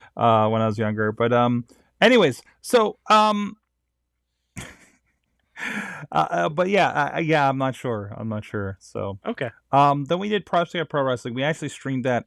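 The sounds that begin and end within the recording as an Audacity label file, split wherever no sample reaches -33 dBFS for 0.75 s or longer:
4.570000	4.710000	sound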